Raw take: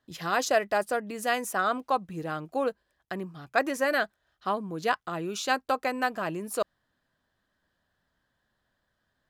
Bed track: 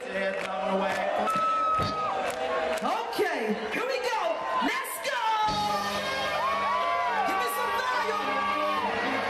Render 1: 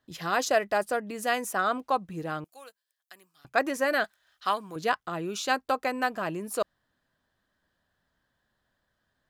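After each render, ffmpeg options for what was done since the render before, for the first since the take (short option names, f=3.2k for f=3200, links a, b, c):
-filter_complex "[0:a]asettb=1/sr,asplit=3[a][b][c];[a]atrim=end=2.444[d];[b]atrim=start=2.44:end=3.45,asetpts=PTS-STARTPTS,afade=t=in:d=0.004:c=qsin,afade=t=out:st=1.006:d=0.004:c=qsin,aderivative[e];[c]atrim=start=3.446[f];[d][e]acrossfade=d=0.004:c1=hsin:c2=qsin[g];[g][f]acrossfade=d=0.004:c1=qsin:c2=hsin,asettb=1/sr,asplit=3[h][i][j];[h]atrim=end=4.044[k];[i]atrim=start=4.04:end=4.76,asetpts=PTS-STARTPTS,afade=t=in:d=0.004:c=qsin,afade=t=out:st=0.716:d=0.004:c=qsin,tiltshelf=f=750:g=-10[l];[j]atrim=start=4.756[m];[k][l]acrossfade=d=0.004:c1=hsin:c2=qsin[n];[n][m]acrossfade=d=0.004:c1=qsin:c2=hsin"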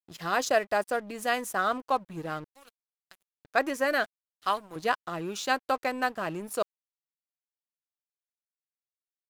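-af "aeval=exprs='sgn(val(0))*max(abs(val(0))-0.00447,0)':c=same"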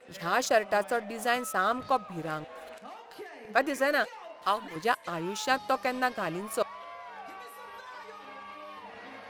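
-filter_complex "[1:a]volume=-17.5dB[a];[0:a][a]amix=inputs=2:normalize=0"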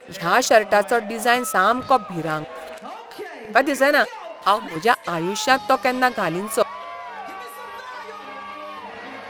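-af "volume=10dB,alimiter=limit=-2dB:level=0:latency=1"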